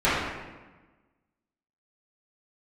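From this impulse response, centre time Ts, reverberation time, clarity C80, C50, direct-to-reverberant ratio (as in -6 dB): 87 ms, 1.2 s, 2.0 dB, -1.5 dB, -14.0 dB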